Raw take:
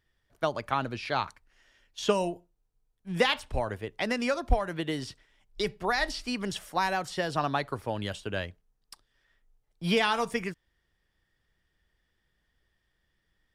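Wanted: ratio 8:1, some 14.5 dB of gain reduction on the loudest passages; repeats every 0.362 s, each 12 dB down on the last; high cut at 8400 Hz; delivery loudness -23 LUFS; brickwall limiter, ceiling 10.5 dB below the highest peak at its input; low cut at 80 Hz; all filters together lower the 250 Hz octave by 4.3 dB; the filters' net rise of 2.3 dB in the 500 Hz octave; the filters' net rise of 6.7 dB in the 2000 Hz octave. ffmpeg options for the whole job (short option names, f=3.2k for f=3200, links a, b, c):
-af "highpass=80,lowpass=8.4k,equalizer=f=250:t=o:g=-7,equalizer=f=500:t=o:g=4,equalizer=f=2k:t=o:g=8,acompressor=threshold=-31dB:ratio=8,alimiter=level_in=3.5dB:limit=-24dB:level=0:latency=1,volume=-3.5dB,aecho=1:1:362|724|1086:0.251|0.0628|0.0157,volume=16.5dB"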